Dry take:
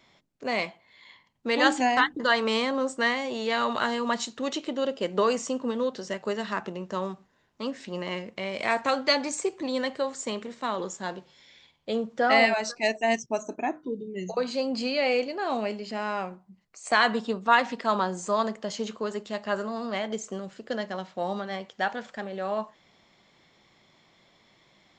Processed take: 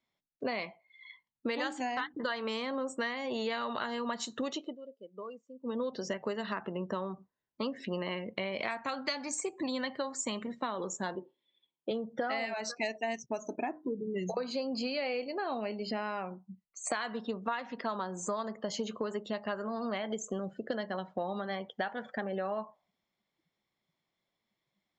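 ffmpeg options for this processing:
ffmpeg -i in.wav -filter_complex "[0:a]asettb=1/sr,asplit=3[link_01][link_02][link_03];[link_01]atrim=end=8.684[link_04];[link_02]atrim=start=8.68:end=10.61,asetpts=PTS-STARTPTS,afade=type=in:duration=0.004:curve=qsin,afade=type=out:start_time=1.926:duration=0.004:curve=qsin,equalizer=frequency=450:width_type=o:width=0.77:gain=-7.5[link_05];[link_03]atrim=start=10.606[link_06];[link_04][link_05]acrossfade=duration=0.004:curve1=hsin:curve2=qsin[link_07];[link_07][link_06]acrossfade=duration=0.004:curve1=qsin:curve2=hsin,asettb=1/sr,asplit=3[link_08][link_09][link_10];[link_08]atrim=end=11.154[link_11];[link_09]atrim=start=11.15:end=11.91,asetpts=PTS-STARTPTS,afade=type=in:duration=0.004:curve=qsin,afade=type=out:start_time=0.756:duration=0.004:curve=qsin,highpass=180,equalizer=frequency=350:width_type=q:width=4:gain=8,equalizer=frequency=720:width_type=q:width=4:gain=-6,equalizer=frequency=1500:width_type=q:width=4:gain=-10,equalizer=frequency=2200:width_type=q:width=4:gain=-8,lowpass=frequency=3300:width=0.5412,lowpass=frequency=3300:width=1.3066[link_12];[link_10]atrim=start=11.906[link_13];[link_11][link_12]acrossfade=duration=0.004:curve1=hsin:curve2=qsin[link_14];[link_14][link_13]acrossfade=duration=0.004:curve1=qsin:curve2=hsin,asplit=3[link_15][link_16][link_17];[link_15]atrim=end=4.77,asetpts=PTS-STARTPTS,afade=type=out:start_time=4.43:duration=0.34:silence=0.0668344[link_18];[link_16]atrim=start=4.77:end=5.6,asetpts=PTS-STARTPTS,volume=-23.5dB[link_19];[link_17]atrim=start=5.6,asetpts=PTS-STARTPTS,afade=type=in:duration=0.34:silence=0.0668344[link_20];[link_18][link_19][link_20]concat=n=3:v=0:a=1,afftdn=noise_reduction=28:noise_floor=-46,acompressor=threshold=-35dB:ratio=12,volume=4dB" out.wav

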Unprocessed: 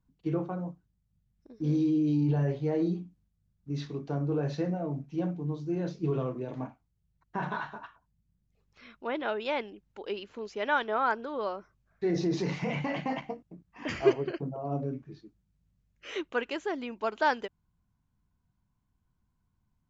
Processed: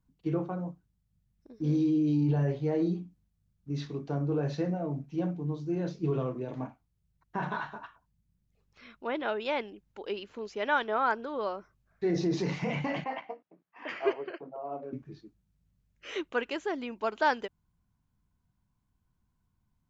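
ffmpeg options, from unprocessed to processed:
ffmpeg -i in.wav -filter_complex "[0:a]asettb=1/sr,asplit=3[link_01][link_02][link_03];[link_01]atrim=end=13.044[link_04];[link_02]atrim=start=13.04:end=14.93,asetpts=PTS-STARTPTS,afade=type=in:duration=0.004:curve=qsin,afade=type=out:start_time=1.886:duration=0.004:curve=qsin,highpass=510,lowpass=2800[link_05];[link_03]atrim=start=14.926[link_06];[link_04][link_05]acrossfade=duration=0.004:curve1=hsin:curve2=qsin[link_07];[link_07][link_06]acrossfade=duration=0.004:curve1=qsin:curve2=hsin" out.wav

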